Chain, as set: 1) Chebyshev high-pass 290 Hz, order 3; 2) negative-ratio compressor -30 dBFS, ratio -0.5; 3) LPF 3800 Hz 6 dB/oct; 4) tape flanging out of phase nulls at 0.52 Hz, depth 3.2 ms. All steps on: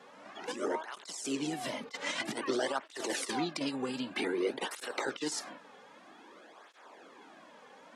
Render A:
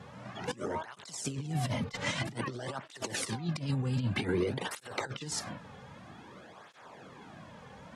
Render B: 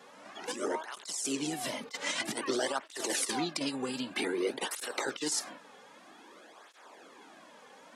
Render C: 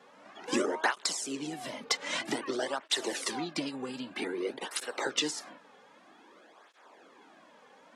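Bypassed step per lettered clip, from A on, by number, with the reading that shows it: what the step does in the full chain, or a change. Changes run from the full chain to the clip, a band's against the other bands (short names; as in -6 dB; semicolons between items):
1, 125 Hz band +19.0 dB; 3, loudness change +1.5 LU; 2, crest factor change +5.0 dB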